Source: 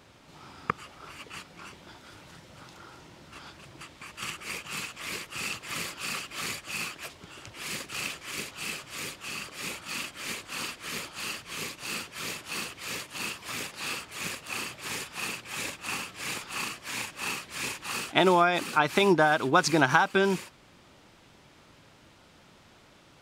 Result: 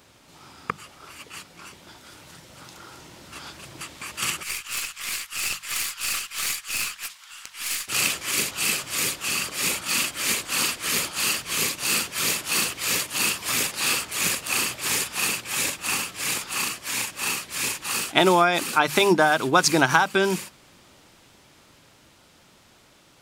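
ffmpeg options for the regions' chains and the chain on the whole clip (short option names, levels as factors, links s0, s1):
-filter_complex "[0:a]asettb=1/sr,asplit=3[s0][s1][s2];[s0]atrim=end=4.434[s3];[s1]atrim=start=4.43:end=7.88,asetpts=PTS-STARTPTS,afade=t=in:d=0.004:c=qsin,afade=t=out:st=3.446:d=0.004:c=qsin,highpass=f=1100:w=0.5412,highpass=f=1100:w=1.3066,aeval=exprs='(tanh(25.1*val(0)+0.8)-tanh(0.8))/25.1':c=same[s4];[s2]atrim=start=7.876[s5];[s3][s4]acrossfade=d=0.004:c1=hsin:c2=qsin[s6];[s6][s5]acrossfade=d=0.004:c1=qsin:c2=hsin,highshelf=f=6100:g=11,bandreject=f=50:t=h:w=6,bandreject=f=100:t=h:w=6,bandreject=f=150:t=h:w=6,bandreject=f=200:t=h:w=6,dynaudnorm=f=340:g=17:m=2.51"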